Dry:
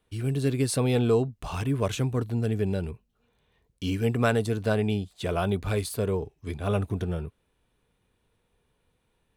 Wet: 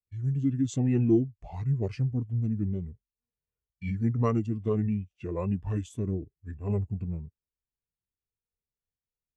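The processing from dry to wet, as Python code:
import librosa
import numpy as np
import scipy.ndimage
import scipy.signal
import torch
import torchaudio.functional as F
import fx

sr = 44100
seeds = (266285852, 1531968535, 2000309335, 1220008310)

y = fx.formant_shift(x, sr, semitones=-5)
y = fx.spectral_expand(y, sr, expansion=1.5)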